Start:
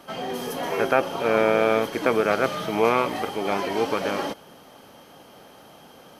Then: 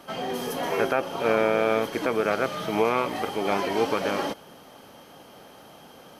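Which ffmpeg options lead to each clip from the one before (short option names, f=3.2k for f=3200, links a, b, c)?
-af "alimiter=limit=-10.5dB:level=0:latency=1:release=349"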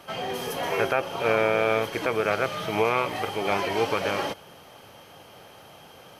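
-af "equalizer=f=100:t=o:w=0.67:g=7,equalizer=f=250:t=o:w=0.67:g=-7,equalizer=f=2.5k:t=o:w=0.67:g=4"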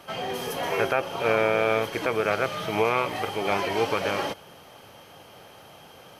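-af anull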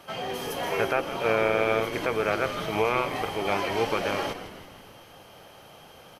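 -filter_complex "[0:a]asplit=7[a][b][c][d][e][f][g];[b]adelay=163,afreqshift=-93,volume=-11.5dB[h];[c]adelay=326,afreqshift=-186,volume=-17.2dB[i];[d]adelay=489,afreqshift=-279,volume=-22.9dB[j];[e]adelay=652,afreqshift=-372,volume=-28.5dB[k];[f]adelay=815,afreqshift=-465,volume=-34.2dB[l];[g]adelay=978,afreqshift=-558,volume=-39.9dB[m];[a][h][i][j][k][l][m]amix=inputs=7:normalize=0,volume=-1.5dB"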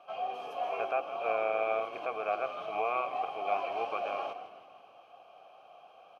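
-filter_complex "[0:a]asplit=3[a][b][c];[a]bandpass=f=730:t=q:w=8,volume=0dB[d];[b]bandpass=f=1.09k:t=q:w=8,volume=-6dB[e];[c]bandpass=f=2.44k:t=q:w=8,volume=-9dB[f];[d][e][f]amix=inputs=3:normalize=0,volume=3dB"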